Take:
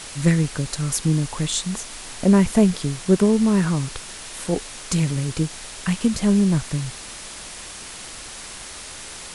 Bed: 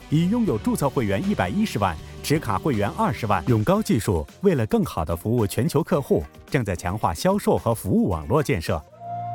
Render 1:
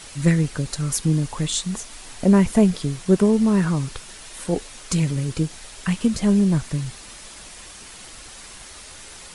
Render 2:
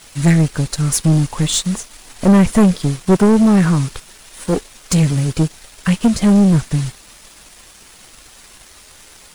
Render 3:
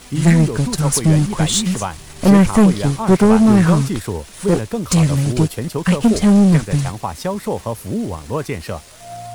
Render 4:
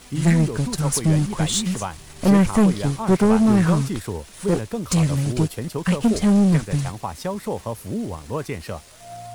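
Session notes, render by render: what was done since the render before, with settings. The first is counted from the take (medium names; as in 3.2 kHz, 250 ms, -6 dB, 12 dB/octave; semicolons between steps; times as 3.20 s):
noise reduction 6 dB, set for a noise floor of -37 dBFS
waveshaping leveller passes 3; upward expansion 1.5:1, over -28 dBFS
add bed -2 dB
trim -5 dB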